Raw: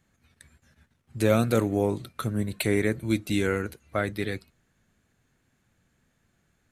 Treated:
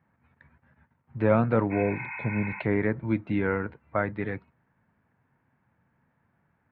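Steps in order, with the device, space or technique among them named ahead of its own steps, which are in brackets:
bass cabinet (loudspeaker in its box 82–2,100 Hz, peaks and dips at 140 Hz +3 dB, 370 Hz −4 dB, 930 Hz +10 dB)
healed spectral selection 0:01.74–0:02.57, 770–2,600 Hz after

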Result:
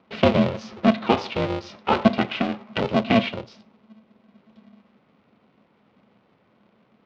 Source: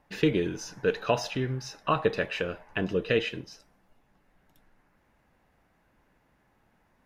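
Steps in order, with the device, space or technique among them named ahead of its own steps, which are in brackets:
ring modulator pedal into a guitar cabinet (ring modulator with a square carrier 220 Hz; loudspeaker in its box 110–4,100 Hz, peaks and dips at 120 Hz +5 dB, 210 Hz +10 dB, 540 Hz +3 dB, 1,700 Hz −7 dB)
level +5 dB

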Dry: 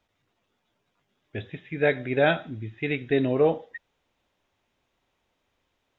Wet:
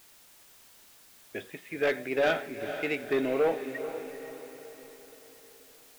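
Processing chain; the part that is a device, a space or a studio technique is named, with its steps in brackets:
tape answering machine (band-pass filter 320–3,300 Hz; soft clipping −19.5 dBFS, distortion −12 dB; tape wow and flutter; white noise bed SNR 23 dB)
feedback delay with all-pass diffusion 465 ms, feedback 47%, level −10 dB

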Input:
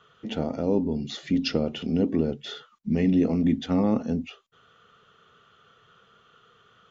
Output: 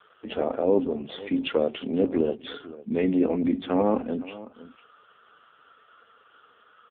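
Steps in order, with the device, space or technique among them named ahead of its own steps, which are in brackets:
noise gate with hold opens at −53 dBFS
satellite phone (band-pass filter 400–3,300 Hz; single-tap delay 503 ms −17.5 dB; level +7 dB; AMR narrowband 5.15 kbit/s 8,000 Hz)

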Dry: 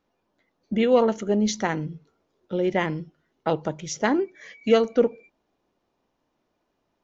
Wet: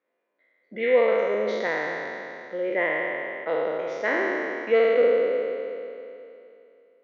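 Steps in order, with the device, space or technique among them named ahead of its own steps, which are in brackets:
peak hold with a decay on every bin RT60 2.78 s
phone earpiece (loudspeaker in its box 470–3,500 Hz, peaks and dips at 510 Hz +6 dB, 830 Hz −9 dB, 1,300 Hz −4 dB, 2,000 Hz +8 dB, 2,900 Hz −5 dB)
parametric band 3,900 Hz −4.5 dB 1.5 octaves
level −4 dB

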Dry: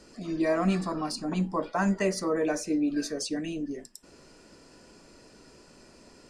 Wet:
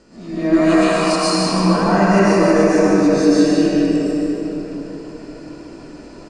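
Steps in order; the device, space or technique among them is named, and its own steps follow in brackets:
peak hold with a rise ahead of every peak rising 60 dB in 0.35 s
low-pass filter 9,300 Hz 24 dB per octave
0:00.53–0:01.33: spectral tilt +4 dB per octave
single-tap delay 151 ms −5 dB
swimming-pool hall (convolution reverb RT60 4.4 s, pre-delay 106 ms, DRR −10.5 dB; high-shelf EQ 3,600 Hz −7 dB)
level +1.5 dB

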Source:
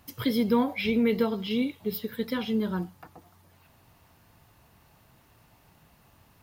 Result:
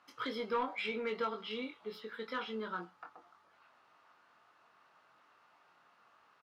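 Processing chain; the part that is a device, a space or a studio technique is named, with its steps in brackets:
intercom (band-pass filter 440–4,400 Hz; parametric band 1,300 Hz +12 dB 0.54 octaves; soft clipping −19 dBFS, distortion −18 dB; double-tracking delay 23 ms −6 dB)
level −7.5 dB

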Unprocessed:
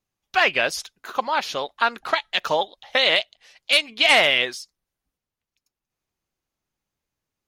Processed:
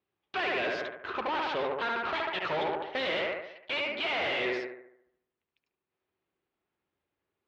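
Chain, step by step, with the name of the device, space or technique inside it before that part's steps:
analogue delay pedal into a guitar amplifier (bucket-brigade delay 72 ms, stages 1,024, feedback 50%, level −4 dB; tube saturation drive 32 dB, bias 0.7; loudspeaker in its box 100–3,500 Hz, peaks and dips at 130 Hz −7 dB, 220 Hz −4 dB, 380 Hz +8 dB)
level +3 dB

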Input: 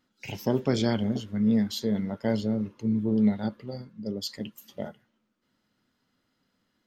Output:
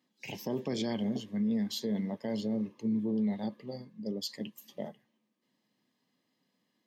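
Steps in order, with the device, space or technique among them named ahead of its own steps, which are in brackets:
PA system with an anti-feedback notch (high-pass filter 140 Hz 24 dB per octave; Butterworth band-reject 1,400 Hz, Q 4; brickwall limiter −21.5 dBFS, peak gain reduction 7.5 dB)
level −3 dB

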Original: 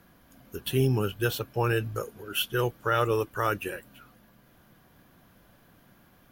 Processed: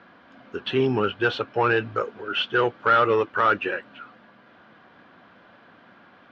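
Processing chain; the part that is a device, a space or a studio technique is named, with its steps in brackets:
overdrive pedal into a guitar cabinet (mid-hump overdrive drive 15 dB, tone 2,000 Hz, clips at −12 dBFS; loudspeaker in its box 97–4,300 Hz, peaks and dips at 140 Hz −5 dB, 240 Hz +3 dB, 1,400 Hz +3 dB)
level +2.5 dB

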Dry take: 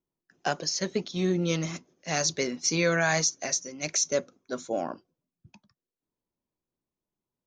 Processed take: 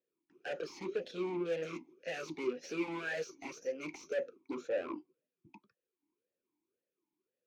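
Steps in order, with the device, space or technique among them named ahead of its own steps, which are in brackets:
talk box (tube saturation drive 38 dB, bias 0.5; formant filter swept between two vowels e-u 1.9 Hz)
level +14 dB

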